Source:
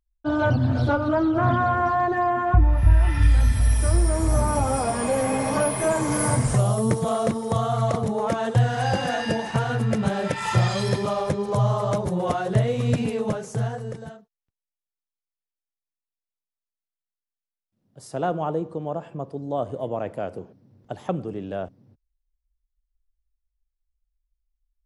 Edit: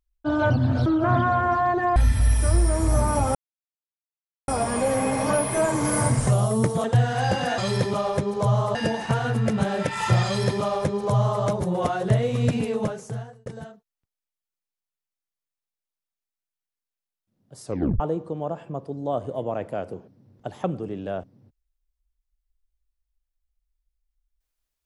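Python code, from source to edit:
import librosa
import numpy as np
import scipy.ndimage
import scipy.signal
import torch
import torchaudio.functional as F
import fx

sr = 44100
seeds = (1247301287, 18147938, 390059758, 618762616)

y = fx.edit(x, sr, fx.cut(start_s=0.86, length_s=0.34),
    fx.cut(start_s=2.3, length_s=1.06),
    fx.insert_silence(at_s=4.75, length_s=1.13),
    fx.cut(start_s=7.11, length_s=1.35),
    fx.duplicate(start_s=10.7, length_s=1.17, to_s=9.2),
    fx.fade_out_span(start_s=13.27, length_s=0.64),
    fx.tape_stop(start_s=18.1, length_s=0.35), tone=tone)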